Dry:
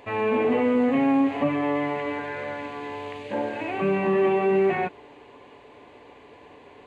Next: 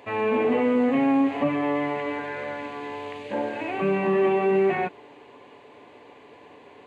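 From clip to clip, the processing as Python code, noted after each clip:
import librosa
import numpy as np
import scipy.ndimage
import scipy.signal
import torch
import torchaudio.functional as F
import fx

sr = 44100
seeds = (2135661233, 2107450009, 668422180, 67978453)

y = scipy.signal.sosfilt(scipy.signal.butter(2, 110.0, 'highpass', fs=sr, output='sos'), x)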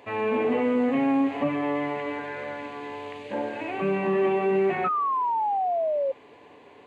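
y = fx.spec_paint(x, sr, seeds[0], shape='fall', start_s=4.84, length_s=1.28, low_hz=530.0, high_hz=1300.0, level_db=-23.0)
y = y * 10.0 ** (-2.0 / 20.0)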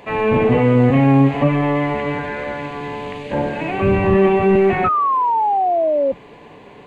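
y = fx.octave_divider(x, sr, octaves=1, level_db=0.0)
y = y * 10.0 ** (8.5 / 20.0)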